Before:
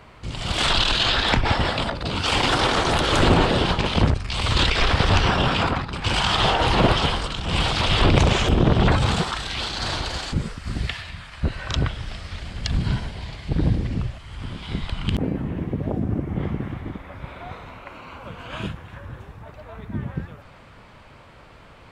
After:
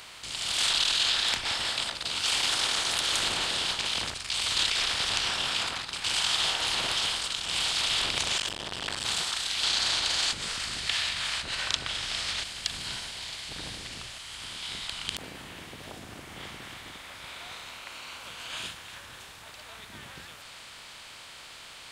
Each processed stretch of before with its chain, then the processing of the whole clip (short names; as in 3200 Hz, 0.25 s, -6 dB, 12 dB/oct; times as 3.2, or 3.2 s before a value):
8.37–9.05 ripple EQ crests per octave 1.3, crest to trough 6 dB + core saturation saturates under 570 Hz
9.63–12.44 air absorption 55 m + fast leveller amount 70%
whole clip: per-bin compression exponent 0.6; pre-emphasis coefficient 0.97